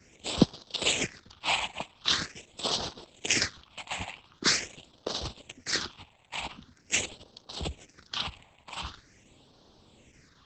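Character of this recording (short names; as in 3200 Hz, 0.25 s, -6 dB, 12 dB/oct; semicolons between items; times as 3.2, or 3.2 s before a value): phasing stages 6, 0.44 Hz, lowest notch 380–2100 Hz; Opus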